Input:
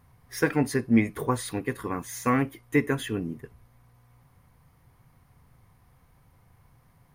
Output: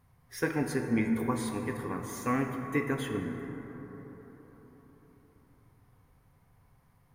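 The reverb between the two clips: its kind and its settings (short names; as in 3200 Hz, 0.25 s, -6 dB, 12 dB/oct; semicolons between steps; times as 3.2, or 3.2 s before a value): plate-style reverb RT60 4.5 s, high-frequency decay 0.3×, DRR 3.5 dB; gain -6.5 dB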